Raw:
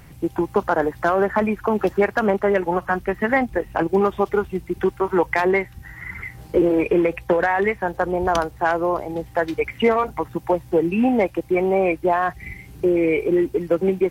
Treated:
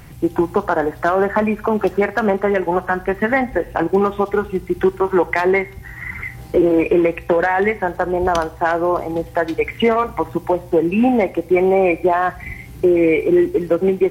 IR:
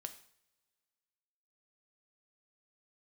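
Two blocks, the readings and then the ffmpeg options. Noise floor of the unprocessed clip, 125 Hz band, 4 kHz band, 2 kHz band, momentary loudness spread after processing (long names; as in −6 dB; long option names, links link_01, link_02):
−44 dBFS, +2.5 dB, +3.5 dB, +2.5 dB, 7 LU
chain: -filter_complex "[0:a]alimiter=limit=-11dB:level=0:latency=1:release=369,asplit=2[link_01][link_02];[1:a]atrim=start_sample=2205[link_03];[link_02][link_03]afir=irnorm=-1:irlink=0,volume=1.5dB[link_04];[link_01][link_04]amix=inputs=2:normalize=0"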